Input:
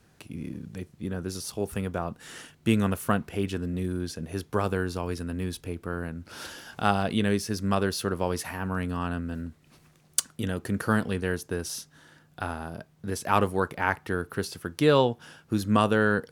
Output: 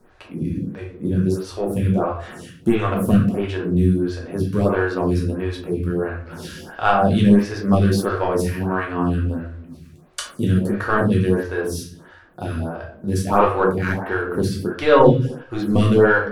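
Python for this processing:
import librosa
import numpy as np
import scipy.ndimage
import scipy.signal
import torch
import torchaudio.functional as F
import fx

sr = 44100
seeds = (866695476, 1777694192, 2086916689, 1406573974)

p1 = fx.high_shelf(x, sr, hz=3000.0, db=-9.0)
p2 = np.clip(p1, -10.0 ** (-20.0 / 20.0), 10.0 ** (-20.0 / 20.0))
p3 = p1 + (p2 * librosa.db_to_amplitude(-7.0))
p4 = fx.room_shoebox(p3, sr, seeds[0], volume_m3=89.0, walls='mixed', distance_m=1.0)
p5 = fx.stagger_phaser(p4, sr, hz=1.5)
y = p5 * librosa.db_to_amplitude(5.0)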